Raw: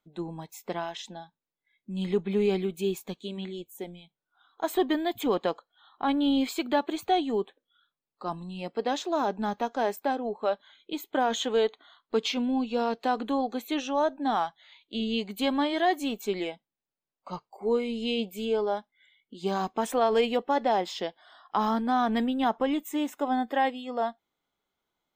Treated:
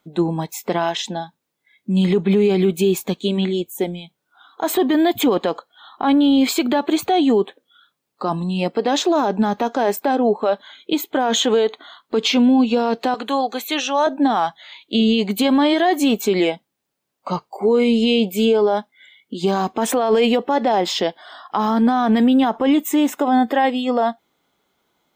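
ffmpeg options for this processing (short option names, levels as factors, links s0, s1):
-filter_complex "[0:a]asettb=1/sr,asplit=3[s0][s1][s2];[s0]atrim=end=13.144[s3];[s1]atrim=start=13.14:end=14.07,asetpts=PTS-STARTPTS,afade=t=in:d=0.004:c=qsin,afade=t=out:st=0.926:d=0.004:c=qsin,highpass=f=1200:p=1[s4];[s2]atrim=start=14.066[s5];[s3][s4]acrossfade=d=0.004:c1=hsin:c2=qsin[s6];[s6][s5]acrossfade=d=0.004:c1=qsin:c2=hsin,highpass=f=190:p=1,lowshelf=f=350:g=6.5,alimiter=level_in=13.3:limit=0.891:release=50:level=0:latency=1,volume=0.398"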